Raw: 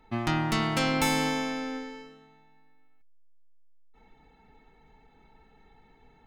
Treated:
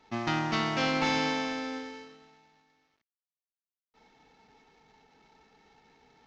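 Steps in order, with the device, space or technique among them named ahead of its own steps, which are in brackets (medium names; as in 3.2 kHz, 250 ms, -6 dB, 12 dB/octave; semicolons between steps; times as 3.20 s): early wireless headset (high-pass 220 Hz 6 dB/octave; CVSD coder 32 kbps)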